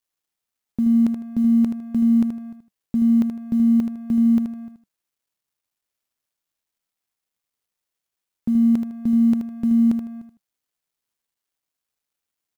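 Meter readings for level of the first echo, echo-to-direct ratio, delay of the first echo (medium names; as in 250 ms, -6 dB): -7.5 dB, -7.0 dB, 78 ms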